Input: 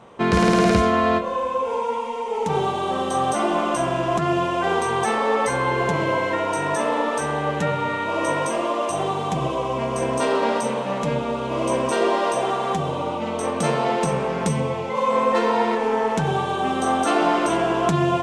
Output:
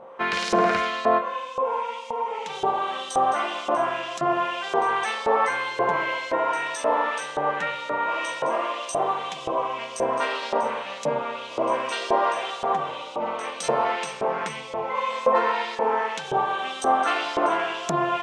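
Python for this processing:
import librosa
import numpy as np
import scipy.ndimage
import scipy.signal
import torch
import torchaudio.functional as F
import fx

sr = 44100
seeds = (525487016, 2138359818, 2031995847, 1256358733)

y = fx.filter_lfo_bandpass(x, sr, shape='saw_up', hz=1.9, low_hz=610.0, high_hz=6000.0, q=1.1)
y = y + 10.0 ** (-47.0 / 20.0) * np.sin(2.0 * np.pi * 530.0 * np.arange(len(y)) / sr)
y = y * 10.0 ** (3.0 / 20.0)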